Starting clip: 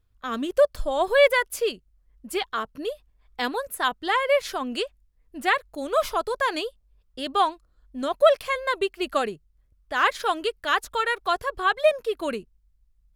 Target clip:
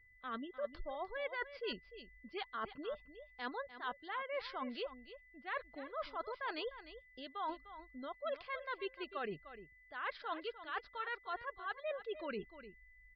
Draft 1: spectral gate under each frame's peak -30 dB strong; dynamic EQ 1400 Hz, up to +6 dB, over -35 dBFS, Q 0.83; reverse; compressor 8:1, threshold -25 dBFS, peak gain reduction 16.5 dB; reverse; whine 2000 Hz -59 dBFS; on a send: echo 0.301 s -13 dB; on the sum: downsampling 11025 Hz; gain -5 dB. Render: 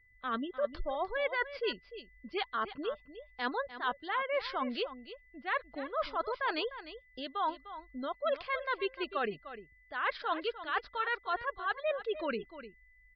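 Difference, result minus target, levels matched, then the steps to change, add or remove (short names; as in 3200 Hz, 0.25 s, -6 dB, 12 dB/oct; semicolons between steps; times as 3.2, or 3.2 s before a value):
compressor: peak gain reduction -8.5 dB
change: compressor 8:1, threshold -34.5 dBFS, peak gain reduction 25 dB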